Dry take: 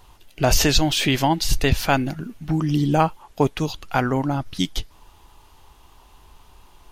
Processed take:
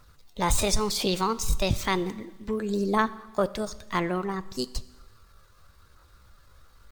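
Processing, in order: pitch shift +5.5 st; phaser 1 Hz, delay 2.1 ms, feedback 23%; Schroeder reverb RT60 1.2 s, combs from 28 ms, DRR 17 dB; trim -7 dB

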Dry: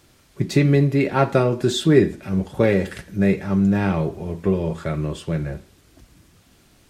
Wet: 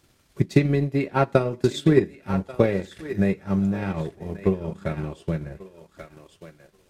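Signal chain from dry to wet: thinning echo 1135 ms, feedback 20%, high-pass 560 Hz, level -9 dB; transient shaper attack +8 dB, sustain -9 dB; trim -6.5 dB

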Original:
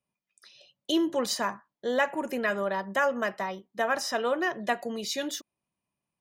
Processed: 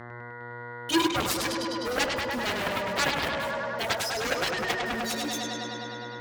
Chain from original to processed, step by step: expander on every frequency bin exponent 3; bit crusher 8-bit; mains buzz 120 Hz, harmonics 17, -50 dBFS -2 dB/octave; bucket-brigade echo 102 ms, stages 4096, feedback 81%, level -4 dB; on a send at -13.5 dB: reverberation RT60 0.55 s, pre-delay 3 ms; on the sum: Chebyshev shaper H 7 -6 dB, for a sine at -16.5 dBFS; high-pass 45 Hz

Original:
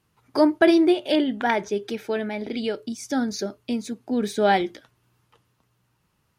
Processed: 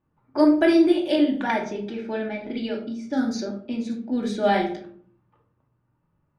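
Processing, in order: simulated room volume 740 m³, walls furnished, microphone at 2.5 m; level-controlled noise filter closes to 1.2 kHz, open at -14 dBFS; trim -5 dB

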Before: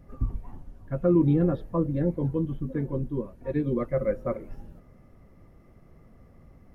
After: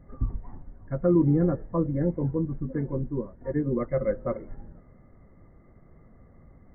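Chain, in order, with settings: brick-wall FIR low-pass 2.2 kHz

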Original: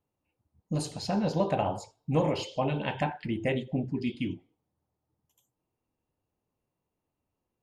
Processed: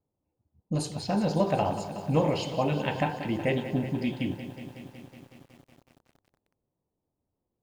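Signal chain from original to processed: level-controlled noise filter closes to 780 Hz, open at -28.5 dBFS; bit-crushed delay 185 ms, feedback 80%, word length 9-bit, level -12 dB; trim +1.5 dB

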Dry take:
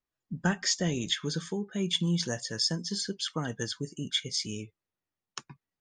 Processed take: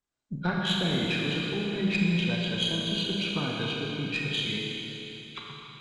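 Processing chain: knee-point frequency compression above 1.3 kHz 1.5:1; in parallel at +3 dB: peak limiter -26 dBFS, peak gain reduction 9 dB; on the sum: Chebyshev shaper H 2 -16 dB, 3 -20 dB, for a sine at -13 dBFS; Schroeder reverb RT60 3.5 s, combs from 27 ms, DRR -2.5 dB; trim -4 dB

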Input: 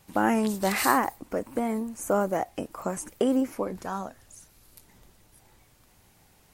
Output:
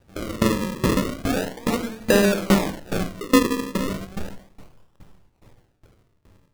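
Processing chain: chunks repeated in reverse 139 ms, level -1 dB; in parallel at -7.5 dB: Schmitt trigger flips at -26.5 dBFS; 2.00–2.57 s: on the sum: tilt shelf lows +5 dB, about 1.2 kHz; simulated room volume 2500 m³, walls furnished, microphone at 4.7 m; dynamic bell 250 Hz, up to +4 dB, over -26 dBFS, Q 1.4; decimation with a swept rate 40×, swing 100% 0.35 Hz; sawtooth tremolo in dB decaying 2.4 Hz, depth 21 dB

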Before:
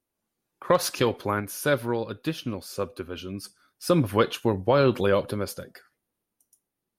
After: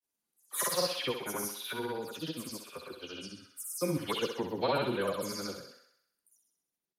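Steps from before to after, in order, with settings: delay that grows with frequency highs early, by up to 193 ms; bass shelf 75 Hz -8.5 dB; granulator, pitch spread up and down by 0 st; treble shelf 3.1 kHz +9.5 dB; on a send: thinning echo 64 ms, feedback 59%, high-pass 330 Hz, level -6.5 dB; on the sum: trim -8.5 dB

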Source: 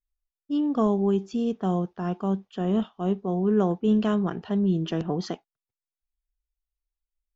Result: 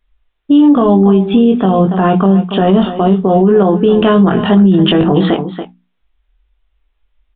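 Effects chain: hum notches 60/120/180/240/300 Hz; compression, threshold -26 dBFS, peak gain reduction 8.5 dB; doubling 21 ms -4 dB; on a send: delay 283 ms -15 dB; on the sum: resampled via 8 kHz; loudness maximiser +25.5 dB; trim -1 dB

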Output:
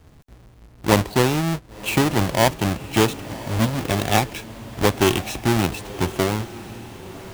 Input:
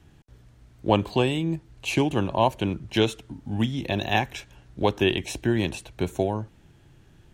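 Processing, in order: square wave that keeps the level; echo that smears into a reverb 1083 ms, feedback 41%, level -15 dB

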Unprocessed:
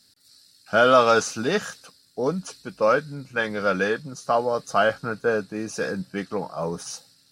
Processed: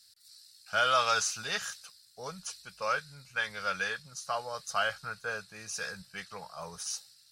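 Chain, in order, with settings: amplifier tone stack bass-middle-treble 10-0-10

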